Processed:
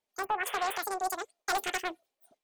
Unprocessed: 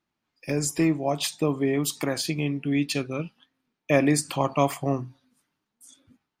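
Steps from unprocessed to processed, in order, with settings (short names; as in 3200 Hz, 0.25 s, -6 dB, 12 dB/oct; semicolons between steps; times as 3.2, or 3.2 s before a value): wavefolder -16 dBFS; spectral gain 0.64–1.14, 1100–11000 Hz -27 dB; wide varispeed 2.63×; painted sound noise, 0.45–0.78, 410–3600 Hz -35 dBFS; Doppler distortion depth 0.27 ms; gain -6 dB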